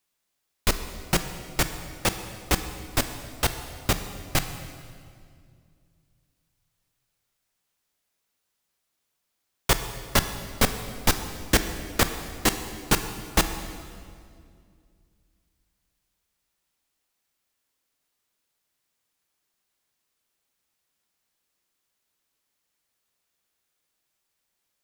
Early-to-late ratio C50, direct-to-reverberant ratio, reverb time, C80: 9.5 dB, 8.0 dB, 2.2 s, 10.0 dB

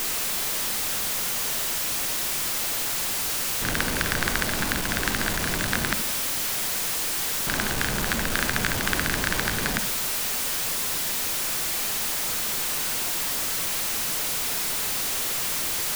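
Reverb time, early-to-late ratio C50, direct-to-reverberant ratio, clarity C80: 0.50 s, 12.0 dB, 10.0 dB, 15.5 dB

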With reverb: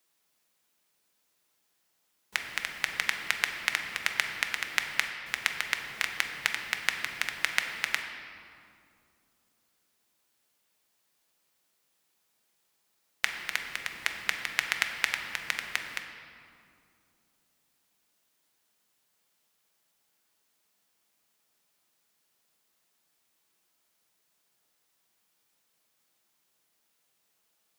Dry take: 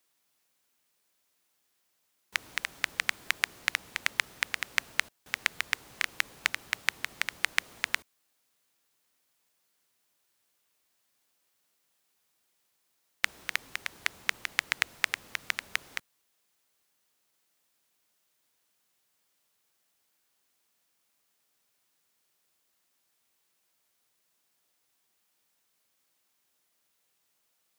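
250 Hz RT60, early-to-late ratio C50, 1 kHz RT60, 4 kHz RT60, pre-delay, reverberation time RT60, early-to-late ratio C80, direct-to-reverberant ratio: 3.6 s, 6.0 dB, 2.2 s, 1.5 s, 5 ms, 2.4 s, 7.0 dB, 4.0 dB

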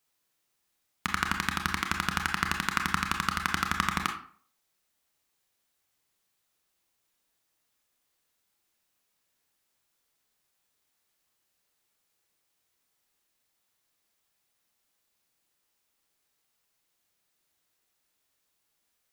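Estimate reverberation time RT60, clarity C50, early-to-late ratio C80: 0.50 s, 8.5 dB, 13.0 dB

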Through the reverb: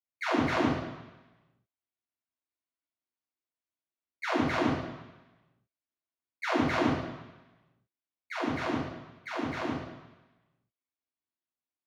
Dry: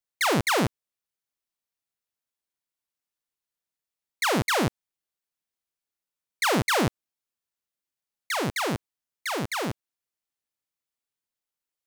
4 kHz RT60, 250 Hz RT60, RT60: 1.1 s, 0.95 s, 1.1 s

